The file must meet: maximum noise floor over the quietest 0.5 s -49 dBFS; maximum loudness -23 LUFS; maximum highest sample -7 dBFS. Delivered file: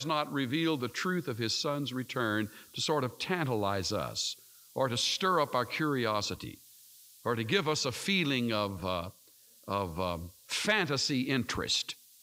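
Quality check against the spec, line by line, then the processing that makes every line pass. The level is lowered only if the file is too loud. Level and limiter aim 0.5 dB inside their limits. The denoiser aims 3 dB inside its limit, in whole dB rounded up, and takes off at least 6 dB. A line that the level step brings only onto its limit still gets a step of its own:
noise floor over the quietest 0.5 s -60 dBFS: pass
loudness -31.5 LUFS: pass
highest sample -14.0 dBFS: pass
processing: none needed

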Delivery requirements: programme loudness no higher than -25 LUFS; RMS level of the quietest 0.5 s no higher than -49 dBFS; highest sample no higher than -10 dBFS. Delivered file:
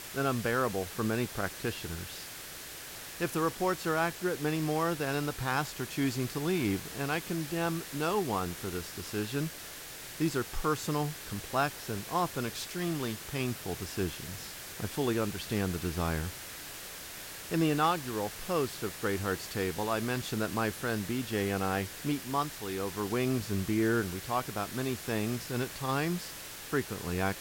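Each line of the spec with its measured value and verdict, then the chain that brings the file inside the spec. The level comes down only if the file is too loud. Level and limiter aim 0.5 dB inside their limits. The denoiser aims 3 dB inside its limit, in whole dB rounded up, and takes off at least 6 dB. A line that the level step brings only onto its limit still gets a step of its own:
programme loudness -33.0 LUFS: pass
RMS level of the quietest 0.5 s -45 dBFS: fail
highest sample -16.5 dBFS: pass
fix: noise reduction 7 dB, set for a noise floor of -45 dBFS

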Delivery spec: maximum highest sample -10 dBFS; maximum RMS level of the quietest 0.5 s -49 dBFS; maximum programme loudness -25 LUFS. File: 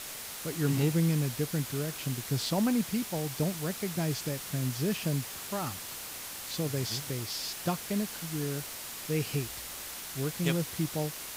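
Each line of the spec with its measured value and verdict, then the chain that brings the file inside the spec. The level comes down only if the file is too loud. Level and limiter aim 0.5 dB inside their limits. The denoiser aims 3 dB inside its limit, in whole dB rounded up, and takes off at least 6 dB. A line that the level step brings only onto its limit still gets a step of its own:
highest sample -14.0 dBFS: pass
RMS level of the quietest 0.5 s -41 dBFS: fail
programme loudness -32.5 LUFS: pass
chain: noise reduction 11 dB, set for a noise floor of -41 dBFS

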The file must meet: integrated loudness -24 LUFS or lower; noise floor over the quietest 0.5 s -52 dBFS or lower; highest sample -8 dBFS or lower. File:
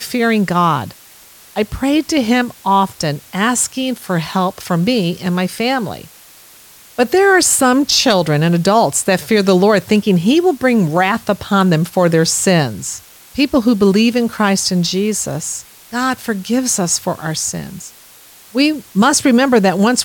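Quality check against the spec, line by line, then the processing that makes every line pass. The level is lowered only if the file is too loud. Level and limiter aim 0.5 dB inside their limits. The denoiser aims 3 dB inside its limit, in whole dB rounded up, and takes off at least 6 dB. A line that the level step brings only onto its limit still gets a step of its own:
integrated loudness -14.5 LUFS: fail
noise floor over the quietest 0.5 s -42 dBFS: fail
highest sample -2.5 dBFS: fail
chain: noise reduction 6 dB, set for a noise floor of -42 dBFS; trim -10 dB

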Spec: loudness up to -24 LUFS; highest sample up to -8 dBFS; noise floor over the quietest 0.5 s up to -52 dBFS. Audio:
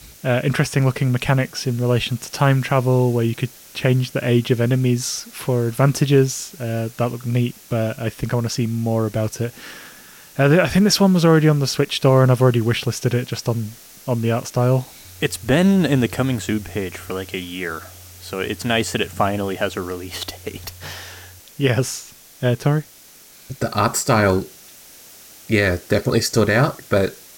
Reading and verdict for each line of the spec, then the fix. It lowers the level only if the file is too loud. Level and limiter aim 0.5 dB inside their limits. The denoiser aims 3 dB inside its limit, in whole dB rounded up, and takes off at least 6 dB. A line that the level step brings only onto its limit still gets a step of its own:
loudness -19.5 LUFS: fail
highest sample -4.5 dBFS: fail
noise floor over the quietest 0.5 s -46 dBFS: fail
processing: noise reduction 6 dB, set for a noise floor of -46 dBFS; trim -5 dB

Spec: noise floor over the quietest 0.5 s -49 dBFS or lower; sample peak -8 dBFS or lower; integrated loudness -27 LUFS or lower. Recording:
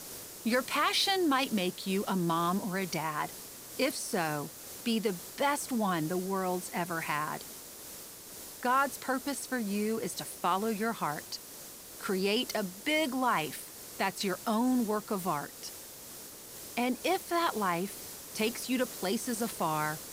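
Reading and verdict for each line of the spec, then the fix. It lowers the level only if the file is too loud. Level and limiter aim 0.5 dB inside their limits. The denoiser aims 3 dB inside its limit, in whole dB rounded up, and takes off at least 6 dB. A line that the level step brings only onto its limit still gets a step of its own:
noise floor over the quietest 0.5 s -48 dBFS: fail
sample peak -15.5 dBFS: pass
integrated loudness -32.0 LUFS: pass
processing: noise reduction 6 dB, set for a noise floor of -48 dBFS

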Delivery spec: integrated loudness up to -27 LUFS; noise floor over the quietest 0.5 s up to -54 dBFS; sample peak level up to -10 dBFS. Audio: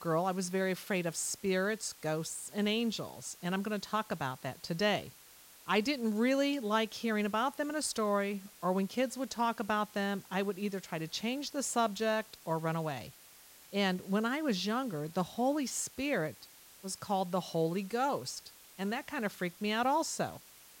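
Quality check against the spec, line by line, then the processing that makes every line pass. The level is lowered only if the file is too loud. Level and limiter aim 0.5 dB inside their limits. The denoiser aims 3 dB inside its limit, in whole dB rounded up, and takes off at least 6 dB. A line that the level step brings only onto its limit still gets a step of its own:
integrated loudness -34.0 LUFS: pass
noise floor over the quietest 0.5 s -57 dBFS: pass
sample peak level -16.5 dBFS: pass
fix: none needed

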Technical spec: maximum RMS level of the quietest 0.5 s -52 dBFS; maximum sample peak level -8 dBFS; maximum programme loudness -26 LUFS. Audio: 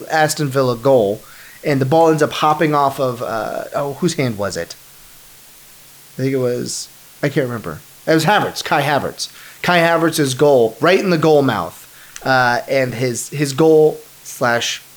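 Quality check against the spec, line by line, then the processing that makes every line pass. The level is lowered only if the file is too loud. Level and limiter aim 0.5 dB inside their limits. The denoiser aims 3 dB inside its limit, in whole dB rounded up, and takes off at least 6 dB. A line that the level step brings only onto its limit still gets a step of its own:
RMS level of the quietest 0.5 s -43 dBFS: fail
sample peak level -3.0 dBFS: fail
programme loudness -16.5 LUFS: fail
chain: trim -10 dB

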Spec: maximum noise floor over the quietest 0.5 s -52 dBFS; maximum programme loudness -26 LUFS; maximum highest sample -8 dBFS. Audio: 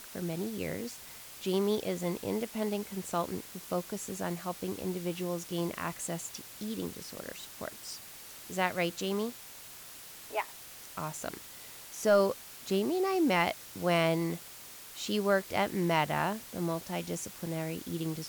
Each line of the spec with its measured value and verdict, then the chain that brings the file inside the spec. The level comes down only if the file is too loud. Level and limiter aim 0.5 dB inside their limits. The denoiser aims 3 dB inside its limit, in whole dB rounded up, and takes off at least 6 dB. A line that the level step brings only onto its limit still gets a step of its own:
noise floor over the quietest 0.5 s -49 dBFS: fail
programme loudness -33.5 LUFS: pass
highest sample -15.0 dBFS: pass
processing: noise reduction 6 dB, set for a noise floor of -49 dBFS

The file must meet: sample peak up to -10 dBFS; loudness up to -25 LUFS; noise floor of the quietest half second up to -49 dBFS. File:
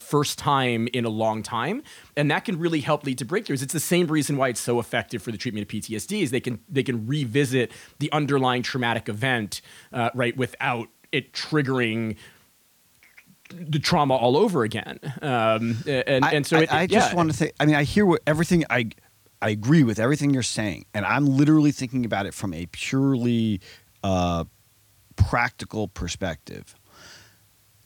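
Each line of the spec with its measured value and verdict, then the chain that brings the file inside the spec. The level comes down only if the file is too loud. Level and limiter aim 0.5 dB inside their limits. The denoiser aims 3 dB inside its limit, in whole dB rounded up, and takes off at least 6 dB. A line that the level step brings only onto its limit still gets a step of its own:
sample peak -6.0 dBFS: fail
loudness -23.5 LUFS: fail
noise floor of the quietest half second -61 dBFS: pass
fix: trim -2 dB; peak limiter -10.5 dBFS

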